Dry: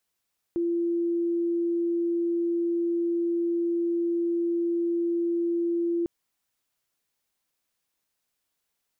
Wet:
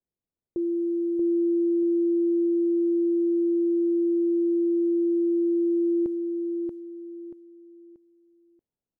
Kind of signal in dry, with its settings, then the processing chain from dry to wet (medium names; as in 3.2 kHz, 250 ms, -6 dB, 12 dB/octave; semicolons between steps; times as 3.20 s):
tone sine 341 Hz -23 dBFS 5.50 s
level-controlled noise filter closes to 400 Hz, open at -27 dBFS; on a send: feedback delay 633 ms, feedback 31%, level -4 dB